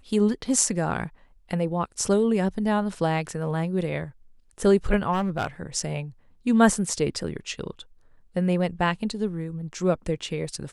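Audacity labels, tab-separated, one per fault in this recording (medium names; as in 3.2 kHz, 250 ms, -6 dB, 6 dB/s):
5.120000	5.470000	clipped -20.5 dBFS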